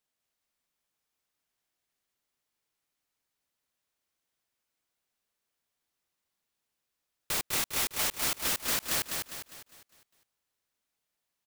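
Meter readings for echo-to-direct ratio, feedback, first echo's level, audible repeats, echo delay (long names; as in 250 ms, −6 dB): −3.0 dB, 44%, −4.0 dB, 5, 202 ms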